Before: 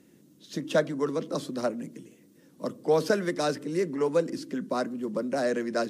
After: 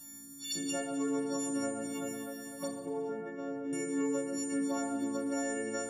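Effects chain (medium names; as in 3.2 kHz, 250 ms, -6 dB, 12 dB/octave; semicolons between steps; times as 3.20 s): partials quantised in pitch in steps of 4 st; treble shelf 2.3 kHz +7.5 dB; touch-sensitive phaser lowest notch 380 Hz, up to 4.1 kHz, full sweep at -26 dBFS; echo whose repeats swap between lows and highs 125 ms, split 2.3 kHz, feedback 72%, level -11 dB; compression 10:1, threshold -37 dBFS, peak gain reduction 20.5 dB; 2.67–3.73 s: tape spacing loss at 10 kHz 42 dB; FDN reverb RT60 1.2 s, low-frequency decay 0.95×, high-frequency decay 0.85×, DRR 1 dB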